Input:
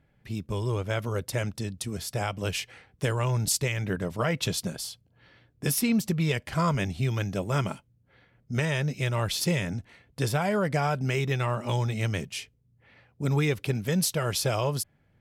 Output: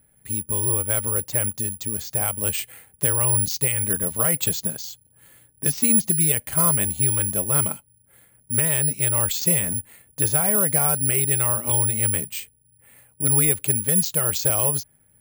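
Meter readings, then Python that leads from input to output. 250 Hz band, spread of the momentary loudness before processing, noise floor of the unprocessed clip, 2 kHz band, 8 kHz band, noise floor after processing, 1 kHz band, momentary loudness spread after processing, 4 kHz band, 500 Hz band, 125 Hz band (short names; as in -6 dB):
0.0 dB, 9 LU, -66 dBFS, 0.0 dB, +15.5 dB, -60 dBFS, 0.0 dB, 10 LU, -0.5 dB, 0.0 dB, 0.0 dB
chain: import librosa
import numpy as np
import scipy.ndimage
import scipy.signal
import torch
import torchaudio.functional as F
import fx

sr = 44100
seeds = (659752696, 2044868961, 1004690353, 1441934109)

y = (np.kron(scipy.signal.resample_poly(x, 1, 4), np.eye(4)[0]) * 4)[:len(x)]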